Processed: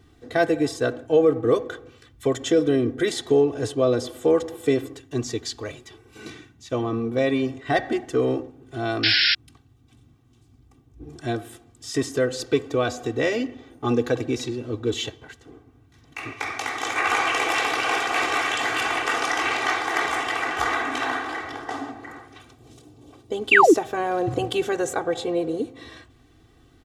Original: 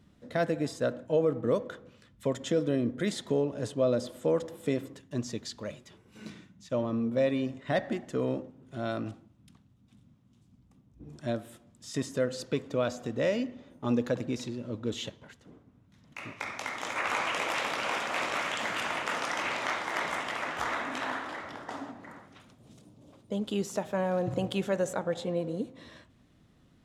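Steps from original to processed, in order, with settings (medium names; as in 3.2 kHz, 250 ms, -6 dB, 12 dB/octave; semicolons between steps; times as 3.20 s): painted sound fall, 23.51–23.74 s, 270–3000 Hz -22 dBFS; comb 2.6 ms, depth 90%; painted sound noise, 9.03–9.35 s, 1.4–5.5 kHz -25 dBFS; trim +6 dB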